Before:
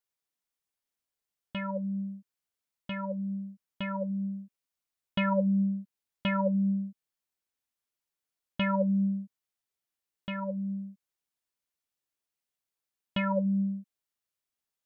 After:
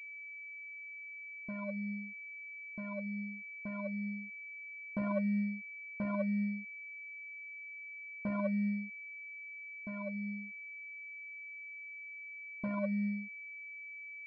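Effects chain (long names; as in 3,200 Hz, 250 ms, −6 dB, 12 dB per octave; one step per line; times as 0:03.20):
wrong playback speed 24 fps film run at 25 fps
low-pass that shuts in the quiet parts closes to 410 Hz, open at −29 dBFS
switching amplifier with a slow clock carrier 2,300 Hz
level −6.5 dB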